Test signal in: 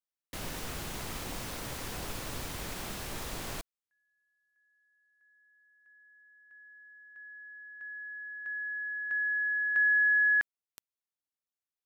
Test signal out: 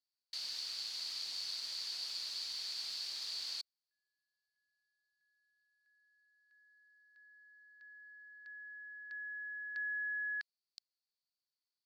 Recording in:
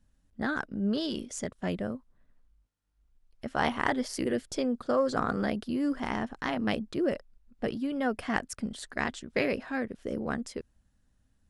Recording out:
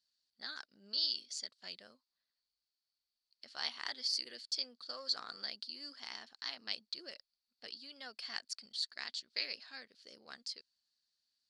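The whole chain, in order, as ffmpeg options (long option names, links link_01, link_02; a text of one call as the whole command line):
ffmpeg -i in.wav -af "bandpass=frequency=4500:width_type=q:width=11:csg=0,volume=14.5dB" out.wav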